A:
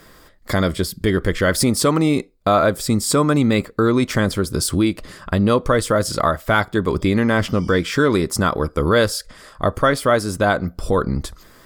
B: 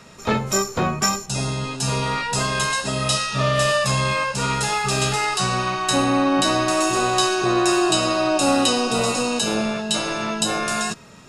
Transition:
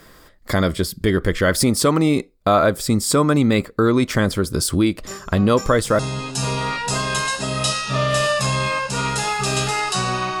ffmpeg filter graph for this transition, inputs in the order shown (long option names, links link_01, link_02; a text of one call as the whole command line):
ffmpeg -i cue0.wav -i cue1.wav -filter_complex "[1:a]asplit=2[link_01][link_02];[0:a]apad=whole_dur=10.4,atrim=end=10.4,atrim=end=5.992[link_03];[link_02]atrim=start=1.438:end=5.85[link_04];[link_01]atrim=start=0.51:end=1.44,asetpts=PTS-STARTPTS,volume=-13.5dB,afade=type=in:duration=0.004:curve=hsin,afade=type=out:start_time=0.926:duration=0.004:curve=hsin,adelay=5060[link_05];[link_03][link_04]acrossfade=duration=0.004:curve1=hsin:curve2=hsin[link_06];[link_06][link_05]amix=inputs=2:normalize=0" out.wav